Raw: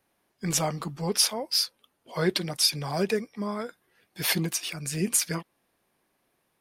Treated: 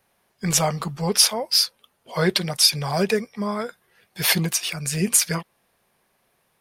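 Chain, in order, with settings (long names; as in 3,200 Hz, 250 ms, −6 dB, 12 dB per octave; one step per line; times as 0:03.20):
parametric band 300 Hz −11 dB 0.4 octaves
level +6.5 dB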